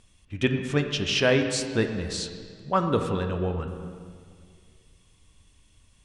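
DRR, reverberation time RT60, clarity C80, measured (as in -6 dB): 5.0 dB, 2.1 s, 7.5 dB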